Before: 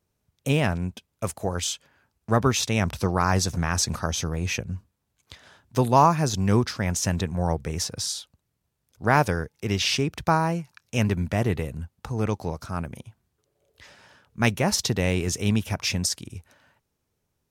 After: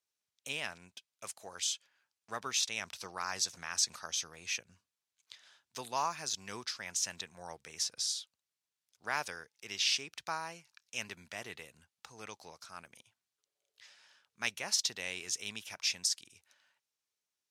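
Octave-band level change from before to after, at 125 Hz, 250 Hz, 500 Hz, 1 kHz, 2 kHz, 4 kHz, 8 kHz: -33.0 dB, -28.0 dB, -21.0 dB, -15.5 dB, -9.5 dB, -5.0 dB, -5.5 dB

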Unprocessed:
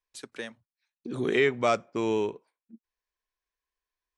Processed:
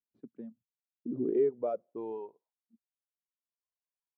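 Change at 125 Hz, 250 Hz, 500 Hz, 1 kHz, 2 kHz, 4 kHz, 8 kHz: -12.5 dB, -5.0 dB, -4.5 dB, -13.5 dB, under -30 dB, under -35 dB, under -30 dB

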